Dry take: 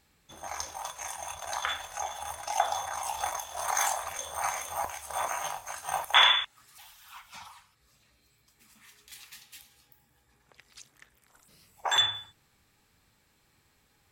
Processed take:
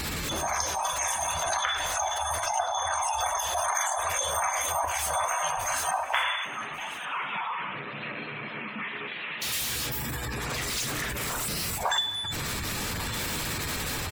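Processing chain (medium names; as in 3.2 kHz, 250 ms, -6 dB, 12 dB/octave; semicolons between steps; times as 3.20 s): jump at every zero crossing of -31.5 dBFS; 5.91–9.42 s: Chebyshev band-pass 160–2700 Hz, order 3; spectral gate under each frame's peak -20 dB strong; band-stop 810 Hz, Q 12; compression, threshold -31 dBFS, peak gain reduction 13 dB; delay 1144 ms -17.5 dB; plate-style reverb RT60 1.8 s, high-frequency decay 0.75×, DRR 14 dB; trim +6.5 dB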